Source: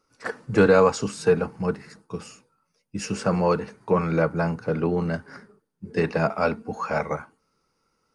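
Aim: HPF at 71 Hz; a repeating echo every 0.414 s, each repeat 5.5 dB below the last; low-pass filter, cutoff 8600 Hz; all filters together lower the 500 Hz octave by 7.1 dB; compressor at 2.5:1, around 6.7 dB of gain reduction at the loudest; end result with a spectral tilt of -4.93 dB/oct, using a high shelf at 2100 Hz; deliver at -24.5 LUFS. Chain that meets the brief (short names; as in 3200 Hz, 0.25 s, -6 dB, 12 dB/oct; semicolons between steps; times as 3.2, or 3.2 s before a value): HPF 71 Hz; LPF 8600 Hz; bell 500 Hz -7.5 dB; high shelf 2100 Hz -9 dB; compressor 2.5:1, threshold -26 dBFS; feedback echo 0.414 s, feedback 53%, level -5.5 dB; gain +7 dB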